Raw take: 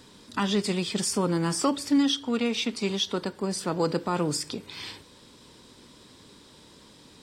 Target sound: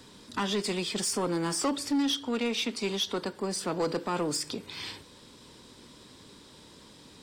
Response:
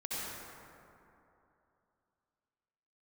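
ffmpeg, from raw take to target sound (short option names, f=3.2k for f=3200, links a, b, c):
-filter_complex "[0:a]acrossover=split=220[a][b];[a]acompressor=threshold=-42dB:ratio=6[c];[c][b]amix=inputs=2:normalize=0,asoftclip=type=tanh:threshold=-22dB"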